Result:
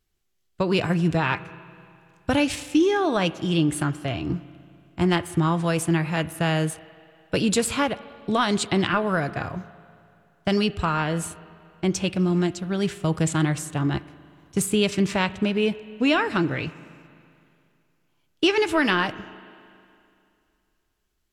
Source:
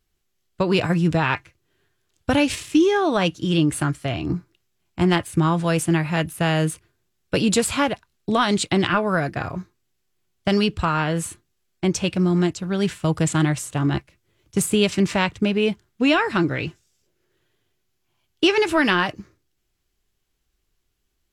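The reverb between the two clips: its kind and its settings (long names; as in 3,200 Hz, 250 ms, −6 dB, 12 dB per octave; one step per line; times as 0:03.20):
spring reverb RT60 2.5 s, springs 37/47 ms, chirp 35 ms, DRR 16 dB
level −2.5 dB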